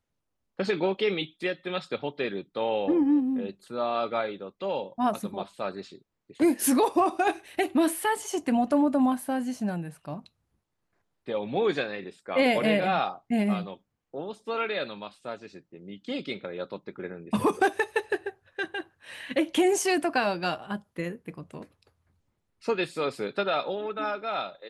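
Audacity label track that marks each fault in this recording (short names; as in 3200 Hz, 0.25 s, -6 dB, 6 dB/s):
7.480000	7.480000	gap 3.3 ms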